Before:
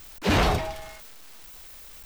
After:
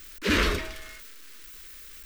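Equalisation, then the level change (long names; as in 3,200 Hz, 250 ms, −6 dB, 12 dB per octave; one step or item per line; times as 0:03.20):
parametric band 1,600 Hz +5.5 dB 1.2 octaves
phaser with its sweep stopped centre 320 Hz, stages 4
0.0 dB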